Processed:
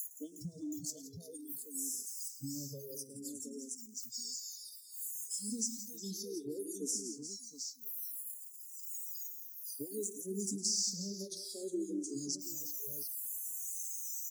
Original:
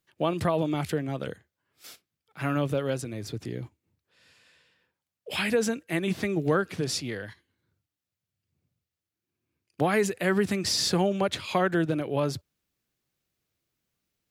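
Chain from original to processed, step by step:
spike at every zero crossing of −29.5 dBFS
meter weighting curve A
noise reduction from a noise print of the clip's start 28 dB
inverse Chebyshev band-stop filter 820–2,600 Hz, stop band 60 dB
parametric band 6,100 Hz +10 dB 1.1 octaves
downward compressor 3 to 1, threshold −48 dBFS, peak gain reduction 19 dB
multi-tap delay 109/168/171/361/721 ms −15/−15/−15.5/−12.5/−7 dB
frequency shifter mixed with the dry sound −0.6 Hz
level +9.5 dB

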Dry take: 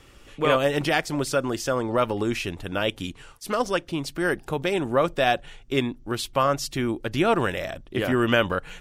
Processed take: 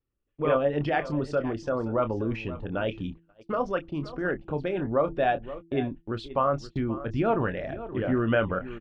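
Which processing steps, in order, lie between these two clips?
spectral envelope exaggerated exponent 1.5
head-to-tape spacing loss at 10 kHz 32 dB
double-tracking delay 27 ms −10 dB
single-tap delay 526 ms −15.5 dB
dynamic equaliser 380 Hz, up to −4 dB, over −36 dBFS, Q 1.7
noise gate −38 dBFS, range −32 dB
hum removal 166.5 Hz, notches 2

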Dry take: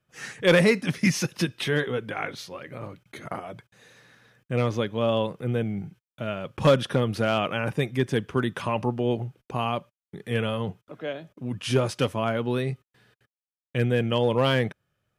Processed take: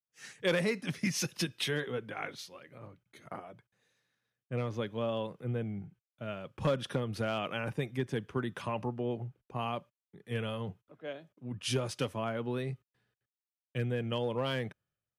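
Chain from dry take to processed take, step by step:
downward compressor 5 to 1, threshold −23 dBFS, peak gain reduction 8.5 dB
multiband upward and downward expander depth 70%
level −6 dB

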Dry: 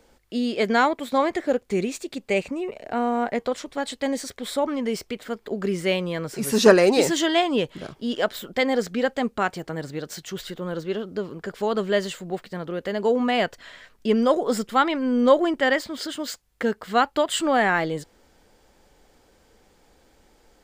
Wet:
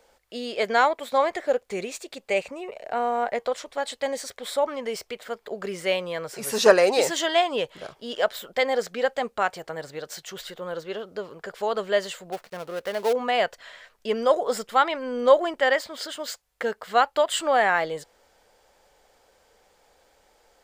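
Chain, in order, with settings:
0:12.32–0:13.13: gap after every zero crossing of 0.16 ms
low shelf with overshoot 400 Hz −9 dB, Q 1.5
level −1 dB

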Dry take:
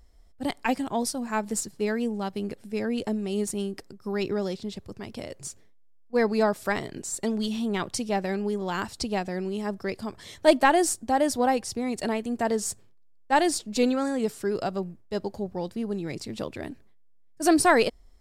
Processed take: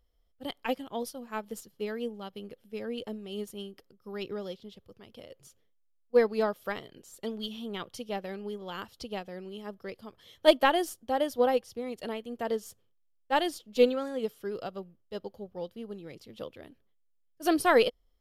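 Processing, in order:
thirty-one-band graphic EQ 500 Hz +9 dB, 1,250 Hz +5 dB, 3,150 Hz +12 dB, 8,000 Hz −9 dB, 12,500 Hz +11 dB
expander for the loud parts 1.5 to 1, over −35 dBFS
level −3.5 dB

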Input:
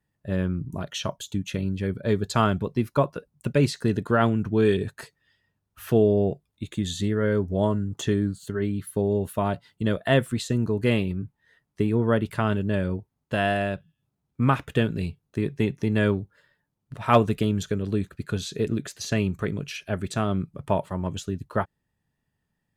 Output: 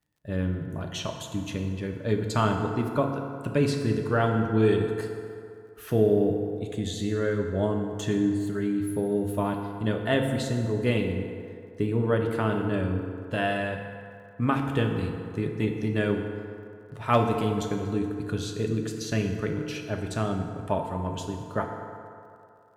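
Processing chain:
feedback delay network reverb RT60 2.6 s, low-frequency decay 0.75×, high-frequency decay 0.5×, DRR 2.5 dB
surface crackle 52 per second −53 dBFS
level −4 dB

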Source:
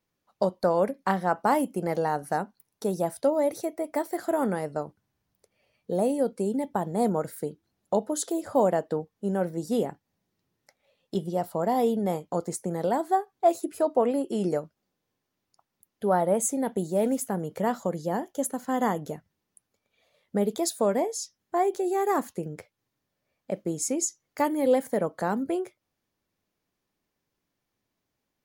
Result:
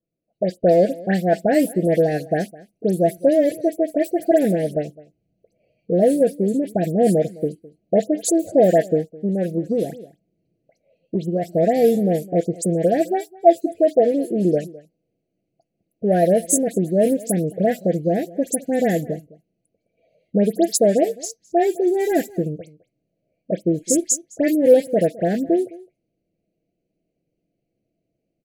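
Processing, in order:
adaptive Wiener filter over 25 samples
comb filter 6.1 ms, depth 36%
all-pass dispersion highs, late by 89 ms, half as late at 2,700 Hz
dynamic equaliser 2,800 Hz, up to −4 dB, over −46 dBFS, Q 0.93
elliptic band-stop filter 690–1,700 Hz, stop band 40 dB
slap from a distant wall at 36 metres, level −21 dB
0:09.13–0:11.49: downward compressor, threshold −27 dBFS, peak gain reduction 5 dB
low-shelf EQ 130 Hz −7 dB
automatic gain control gain up to 10 dB
level +1 dB

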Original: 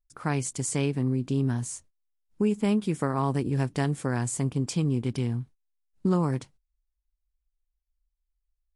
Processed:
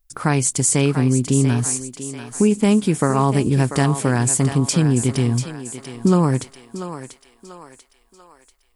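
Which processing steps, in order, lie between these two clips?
high-shelf EQ 8,500 Hz +9.5 dB
in parallel at −1.5 dB: downward compressor, threshold −33 dBFS, peak gain reduction 12.5 dB
on the sum: feedback echo with a high-pass in the loop 690 ms, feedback 48%, high-pass 440 Hz, level −8.5 dB
level +7 dB

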